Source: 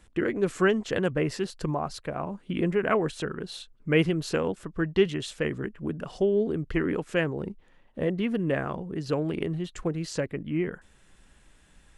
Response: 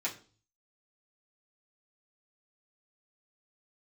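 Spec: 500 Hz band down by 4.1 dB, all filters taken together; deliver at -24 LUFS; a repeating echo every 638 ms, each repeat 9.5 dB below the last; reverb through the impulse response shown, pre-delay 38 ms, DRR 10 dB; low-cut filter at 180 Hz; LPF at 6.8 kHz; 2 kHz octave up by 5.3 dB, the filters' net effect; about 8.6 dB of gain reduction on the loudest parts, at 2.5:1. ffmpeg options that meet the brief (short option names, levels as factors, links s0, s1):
-filter_complex "[0:a]highpass=180,lowpass=6800,equalizer=f=500:t=o:g=-5.5,equalizer=f=2000:t=o:g=7,acompressor=threshold=0.0282:ratio=2.5,aecho=1:1:638|1276|1914|2552:0.335|0.111|0.0365|0.012,asplit=2[s0][s1];[1:a]atrim=start_sample=2205,adelay=38[s2];[s1][s2]afir=irnorm=-1:irlink=0,volume=0.2[s3];[s0][s3]amix=inputs=2:normalize=0,volume=3.35"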